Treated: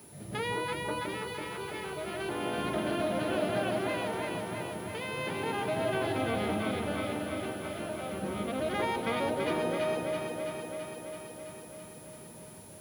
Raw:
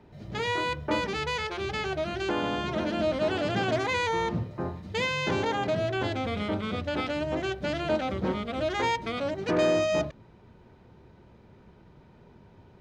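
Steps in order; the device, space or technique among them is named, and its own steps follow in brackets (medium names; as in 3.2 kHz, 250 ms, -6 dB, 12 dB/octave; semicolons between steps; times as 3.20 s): medium wave at night (band-pass 110–4000 Hz; compression, threshold -29 dBFS, peak gain reduction 9 dB; tremolo 0.33 Hz, depth 69%; whistle 10 kHz -54 dBFS; white noise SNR 24 dB); echo whose repeats swap between lows and highs 166 ms, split 840 Hz, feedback 84%, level -2 dB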